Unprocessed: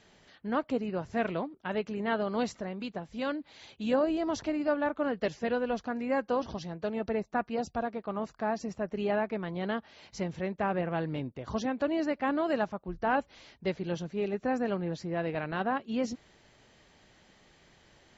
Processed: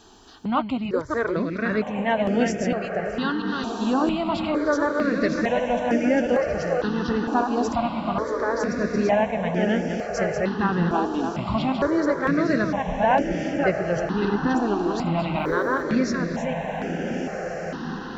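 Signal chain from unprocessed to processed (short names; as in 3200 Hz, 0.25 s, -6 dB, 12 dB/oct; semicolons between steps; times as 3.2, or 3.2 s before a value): reverse delay 0.285 s, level -5 dB; in parallel at -0.5 dB: compressor, threshold -37 dBFS, peak gain reduction 15 dB; 15.37–15.82 on the sum: requantised 12-bit, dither triangular; diffused feedback echo 1.348 s, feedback 65%, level -7 dB; step phaser 2.2 Hz 560–4000 Hz; gain +8 dB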